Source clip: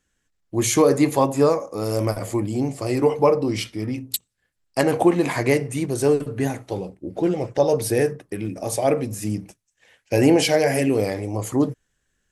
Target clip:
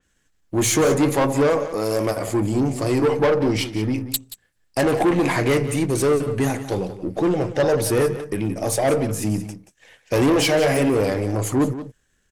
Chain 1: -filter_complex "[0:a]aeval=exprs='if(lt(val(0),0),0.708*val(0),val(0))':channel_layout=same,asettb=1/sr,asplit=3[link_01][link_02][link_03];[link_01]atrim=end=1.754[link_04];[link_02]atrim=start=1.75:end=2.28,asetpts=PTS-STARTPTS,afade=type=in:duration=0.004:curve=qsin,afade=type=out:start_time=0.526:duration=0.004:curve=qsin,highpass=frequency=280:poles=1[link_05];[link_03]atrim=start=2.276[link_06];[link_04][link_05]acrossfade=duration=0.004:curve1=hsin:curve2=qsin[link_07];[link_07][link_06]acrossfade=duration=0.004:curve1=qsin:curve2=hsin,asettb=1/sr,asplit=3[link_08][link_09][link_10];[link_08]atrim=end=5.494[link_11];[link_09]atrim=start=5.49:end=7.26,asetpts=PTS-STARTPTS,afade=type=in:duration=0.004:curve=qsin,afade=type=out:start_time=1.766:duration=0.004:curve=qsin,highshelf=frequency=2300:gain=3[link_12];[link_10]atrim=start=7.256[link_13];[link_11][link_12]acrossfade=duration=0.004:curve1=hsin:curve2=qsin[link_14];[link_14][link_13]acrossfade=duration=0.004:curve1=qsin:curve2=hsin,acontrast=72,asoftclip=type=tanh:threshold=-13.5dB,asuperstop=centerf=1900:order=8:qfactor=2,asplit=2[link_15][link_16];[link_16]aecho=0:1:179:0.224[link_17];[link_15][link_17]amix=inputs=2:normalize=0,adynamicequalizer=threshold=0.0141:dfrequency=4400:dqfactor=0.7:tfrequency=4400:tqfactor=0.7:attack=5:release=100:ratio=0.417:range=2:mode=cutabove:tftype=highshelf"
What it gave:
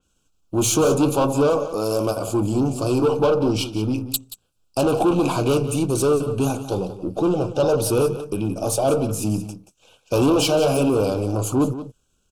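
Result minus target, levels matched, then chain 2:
2,000 Hz band −7.5 dB
-filter_complex "[0:a]aeval=exprs='if(lt(val(0),0),0.708*val(0),val(0))':channel_layout=same,asettb=1/sr,asplit=3[link_01][link_02][link_03];[link_01]atrim=end=1.754[link_04];[link_02]atrim=start=1.75:end=2.28,asetpts=PTS-STARTPTS,afade=type=in:duration=0.004:curve=qsin,afade=type=out:start_time=0.526:duration=0.004:curve=qsin,highpass=frequency=280:poles=1[link_05];[link_03]atrim=start=2.276[link_06];[link_04][link_05]acrossfade=duration=0.004:curve1=hsin:curve2=qsin[link_07];[link_07][link_06]acrossfade=duration=0.004:curve1=qsin:curve2=hsin,asettb=1/sr,asplit=3[link_08][link_09][link_10];[link_08]atrim=end=5.494[link_11];[link_09]atrim=start=5.49:end=7.26,asetpts=PTS-STARTPTS,afade=type=in:duration=0.004:curve=qsin,afade=type=out:start_time=1.766:duration=0.004:curve=qsin,highshelf=frequency=2300:gain=3[link_12];[link_10]atrim=start=7.256[link_13];[link_11][link_12]acrossfade=duration=0.004:curve1=hsin:curve2=qsin[link_14];[link_14][link_13]acrossfade=duration=0.004:curve1=qsin:curve2=hsin,acontrast=72,asoftclip=type=tanh:threshold=-13.5dB,asplit=2[link_15][link_16];[link_16]aecho=0:1:179:0.224[link_17];[link_15][link_17]amix=inputs=2:normalize=0,adynamicequalizer=threshold=0.0141:dfrequency=4400:dqfactor=0.7:tfrequency=4400:tqfactor=0.7:attack=5:release=100:ratio=0.417:range=2:mode=cutabove:tftype=highshelf"

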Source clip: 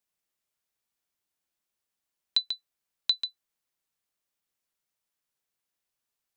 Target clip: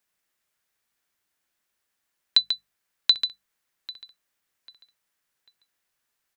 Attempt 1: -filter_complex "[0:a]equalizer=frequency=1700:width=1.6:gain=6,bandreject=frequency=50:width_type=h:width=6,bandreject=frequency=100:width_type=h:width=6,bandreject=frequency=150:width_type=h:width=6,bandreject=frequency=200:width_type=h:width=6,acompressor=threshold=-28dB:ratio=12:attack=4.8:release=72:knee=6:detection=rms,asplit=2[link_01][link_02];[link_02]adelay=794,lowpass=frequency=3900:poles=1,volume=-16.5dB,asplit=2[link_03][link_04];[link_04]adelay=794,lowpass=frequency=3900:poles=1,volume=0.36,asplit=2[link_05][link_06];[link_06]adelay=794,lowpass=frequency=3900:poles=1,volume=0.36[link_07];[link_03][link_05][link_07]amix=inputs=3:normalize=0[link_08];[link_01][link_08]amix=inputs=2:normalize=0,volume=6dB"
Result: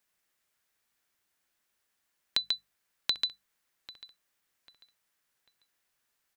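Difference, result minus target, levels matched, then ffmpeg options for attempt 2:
downward compressor: peak gain reduction +12 dB
-filter_complex "[0:a]equalizer=frequency=1700:width=1.6:gain=6,bandreject=frequency=50:width_type=h:width=6,bandreject=frequency=100:width_type=h:width=6,bandreject=frequency=150:width_type=h:width=6,bandreject=frequency=200:width_type=h:width=6,asplit=2[link_01][link_02];[link_02]adelay=794,lowpass=frequency=3900:poles=1,volume=-16.5dB,asplit=2[link_03][link_04];[link_04]adelay=794,lowpass=frequency=3900:poles=1,volume=0.36,asplit=2[link_05][link_06];[link_06]adelay=794,lowpass=frequency=3900:poles=1,volume=0.36[link_07];[link_03][link_05][link_07]amix=inputs=3:normalize=0[link_08];[link_01][link_08]amix=inputs=2:normalize=0,volume=6dB"

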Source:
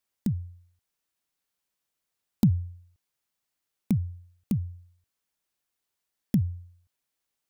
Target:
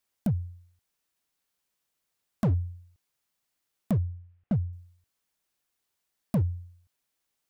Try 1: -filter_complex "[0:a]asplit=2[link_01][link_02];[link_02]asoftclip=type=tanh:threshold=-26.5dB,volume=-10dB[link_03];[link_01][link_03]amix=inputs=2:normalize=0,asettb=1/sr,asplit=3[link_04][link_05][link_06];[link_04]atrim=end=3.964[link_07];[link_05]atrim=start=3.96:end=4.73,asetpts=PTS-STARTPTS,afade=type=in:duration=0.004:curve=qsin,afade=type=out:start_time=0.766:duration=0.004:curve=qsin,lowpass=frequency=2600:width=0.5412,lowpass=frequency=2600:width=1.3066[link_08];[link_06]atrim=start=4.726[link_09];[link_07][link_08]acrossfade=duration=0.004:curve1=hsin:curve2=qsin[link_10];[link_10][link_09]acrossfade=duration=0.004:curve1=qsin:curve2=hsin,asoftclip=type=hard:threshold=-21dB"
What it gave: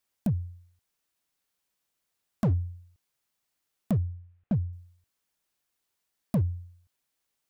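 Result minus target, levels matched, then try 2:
soft clipping: distortion +8 dB
-filter_complex "[0:a]asplit=2[link_01][link_02];[link_02]asoftclip=type=tanh:threshold=-17.5dB,volume=-10dB[link_03];[link_01][link_03]amix=inputs=2:normalize=0,asettb=1/sr,asplit=3[link_04][link_05][link_06];[link_04]atrim=end=3.964[link_07];[link_05]atrim=start=3.96:end=4.73,asetpts=PTS-STARTPTS,afade=type=in:duration=0.004:curve=qsin,afade=type=out:start_time=0.766:duration=0.004:curve=qsin,lowpass=frequency=2600:width=0.5412,lowpass=frequency=2600:width=1.3066[link_08];[link_06]atrim=start=4.726[link_09];[link_07][link_08]acrossfade=duration=0.004:curve1=hsin:curve2=qsin[link_10];[link_10][link_09]acrossfade=duration=0.004:curve1=qsin:curve2=hsin,asoftclip=type=hard:threshold=-21dB"

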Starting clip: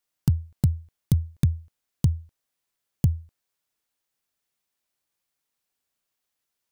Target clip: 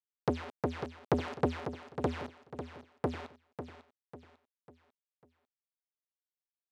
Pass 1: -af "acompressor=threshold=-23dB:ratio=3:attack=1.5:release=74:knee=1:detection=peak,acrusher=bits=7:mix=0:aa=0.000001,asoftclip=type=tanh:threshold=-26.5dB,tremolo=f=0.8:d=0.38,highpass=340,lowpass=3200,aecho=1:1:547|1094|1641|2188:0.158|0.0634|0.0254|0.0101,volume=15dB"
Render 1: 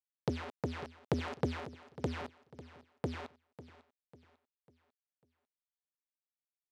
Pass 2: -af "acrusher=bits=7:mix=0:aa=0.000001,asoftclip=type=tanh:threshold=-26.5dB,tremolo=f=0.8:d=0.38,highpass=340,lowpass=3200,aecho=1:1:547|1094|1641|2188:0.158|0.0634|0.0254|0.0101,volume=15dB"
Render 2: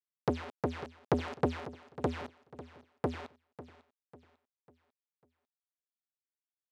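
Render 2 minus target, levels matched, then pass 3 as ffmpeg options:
echo-to-direct −6 dB
-af "acrusher=bits=7:mix=0:aa=0.000001,asoftclip=type=tanh:threshold=-26.5dB,tremolo=f=0.8:d=0.38,highpass=340,lowpass=3200,aecho=1:1:547|1094|1641|2188:0.316|0.126|0.0506|0.0202,volume=15dB"

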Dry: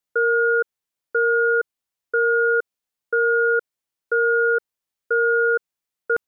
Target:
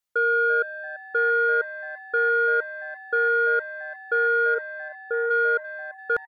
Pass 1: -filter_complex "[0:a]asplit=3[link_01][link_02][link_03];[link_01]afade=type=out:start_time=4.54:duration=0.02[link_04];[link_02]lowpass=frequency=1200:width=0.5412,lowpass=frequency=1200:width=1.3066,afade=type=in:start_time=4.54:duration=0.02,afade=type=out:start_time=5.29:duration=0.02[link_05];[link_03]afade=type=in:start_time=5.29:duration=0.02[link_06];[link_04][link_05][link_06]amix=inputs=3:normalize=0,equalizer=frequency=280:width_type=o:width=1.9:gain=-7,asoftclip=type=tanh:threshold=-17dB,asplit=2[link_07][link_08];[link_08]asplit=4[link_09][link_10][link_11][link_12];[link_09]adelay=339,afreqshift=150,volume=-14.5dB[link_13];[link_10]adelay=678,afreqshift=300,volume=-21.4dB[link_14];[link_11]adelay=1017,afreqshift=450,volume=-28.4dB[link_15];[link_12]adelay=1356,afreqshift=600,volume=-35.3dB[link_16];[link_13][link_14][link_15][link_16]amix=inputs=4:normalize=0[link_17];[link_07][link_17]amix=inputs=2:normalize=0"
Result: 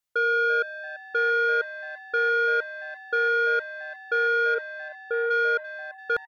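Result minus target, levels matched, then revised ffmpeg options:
soft clipping: distortion +12 dB
-filter_complex "[0:a]asplit=3[link_01][link_02][link_03];[link_01]afade=type=out:start_time=4.54:duration=0.02[link_04];[link_02]lowpass=frequency=1200:width=0.5412,lowpass=frequency=1200:width=1.3066,afade=type=in:start_time=4.54:duration=0.02,afade=type=out:start_time=5.29:duration=0.02[link_05];[link_03]afade=type=in:start_time=5.29:duration=0.02[link_06];[link_04][link_05][link_06]amix=inputs=3:normalize=0,equalizer=frequency=280:width_type=o:width=1.9:gain=-7,asoftclip=type=tanh:threshold=-10dB,asplit=2[link_07][link_08];[link_08]asplit=4[link_09][link_10][link_11][link_12];[link_09]adelay=339,afreqshift=150,volume=-14.5dB[link_13];[link_10]adelay=678,afreqshift=300,volume=-21.4dB[link_14];[link_11]adelay=1017,afreqshift=450,volume=-28.4dB[link_15];[link_12]adelay=1356,afreqshift=600,volume=-35.3dB[link_16];[link_13][link_14][link_15][link_16]amix=inputs=4:normalize=0[link_17];[link_07][link_17]amix=inputs=2:normalize=0"

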